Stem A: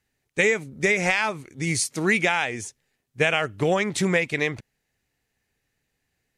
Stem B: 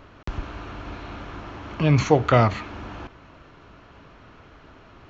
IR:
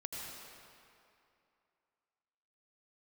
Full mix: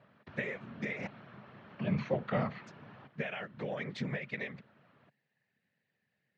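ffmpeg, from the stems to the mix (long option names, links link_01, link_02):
-filter_complex "[0:a]acompressor=threshold=-29dB:ratio=16,volume=-1.5dB,asplit=3[link_01][link_02][link_03];[link_01]atrim=end=1.07,asetpts=PTS-STARTPTS,afade=type=out:start_time=1.066:duration=0.004:curve=hsin[link_04];[link_02]atrim=start=1.07:end=2.67,asetpts=PTS-STARTPTS,volume=0[link_05];[link_03]atrim=start=2.67,asetpts=PTS-STARTPTS,afade=type=in:duration=0.004:curve=hsin[link_06];[link_04][link_05][link_06]concat=n=3:v=0:a=1[link_07];[1:a]volume=-11.5dB[link_08];[link_07][link_08]amix=inputs=2:normalize=0,afftfilt=real='hypot(re,im)*cos(2*PI*random(0))':imag='hypot(re,im)*sin(2*PI*random(1))':win_size=512:overlap=0.75,highpass=frequency=110:width=0.5412,highpass=frequency=110:width=1.3066,equalizer=frequency=140:width_type=q:width=4:gain=7,equalizer=frequency=210:width_type=q:width=4:gain=7,equalizer=frequency=320:width_type=q:width=4:gain=-5,equalizer=frequency=580:width_type=q:width=4:gain=5,equalizer=frequency=1800:width_type=q:width=4:gain=6,lowpass=frequency=4300:width=0.5412,lowpass=frequency=4300:width=1.3066"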